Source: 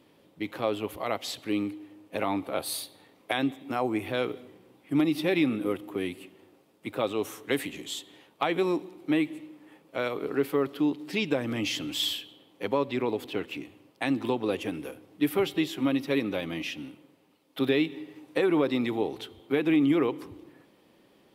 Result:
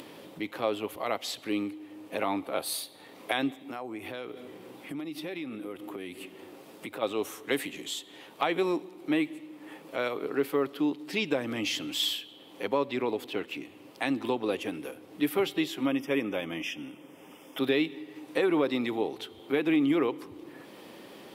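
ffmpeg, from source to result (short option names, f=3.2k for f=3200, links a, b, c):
-filter_complex "[0:a]asplit=3[a][b][c];[a]afade=t=out:st=3.61:d=0.02[d];[b]acompressor=threshold=-38dB:ratio=2.5:attack=3.2:release=140:knee=1:detection=peak,afade=t=in:st=3.61:d=0.02,afade=t=out:st=7.01:d=0.02[e];[c]afade=t=in:st=7.01:d=0.02[f];[d][e][f]amix=inputs=3:normalize=0,asettb=1/sr,asplit=3[g][h][i];[g]atrim=end=15.864[j];[h]atrim=start=15.86:end=17.59,asetpts=PTS-STARTPTS,afade=t=in:d=0.004:c=qsin,afade=t=out:st=1.726:d=0.004:c=qsin,asuperstop=centerf=4200:order=12:qfactor=3.1[k];[i]atrim=start=17.586[l];[j][k]acrossfade=d=0.004:c1=hsin:c2=qsin[m];[m][l]acrossfade=d=0.004:c1=qsin:c2=hsin,highpass=f=230:p=1,acompressor=mode=upward:threshold=-34dB:ratio=2.5"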